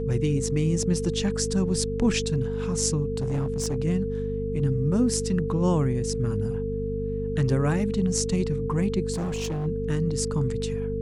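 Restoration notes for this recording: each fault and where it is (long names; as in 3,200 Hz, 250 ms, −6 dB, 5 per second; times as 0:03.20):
mains hum 50 Hz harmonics 5 −31 dBFS
whistle 450 Hz −29 dBFS
0:03.16–0:03.76: clipping −22 dBFS
0:09.13–0:09.67: clipping −25.5 dBFS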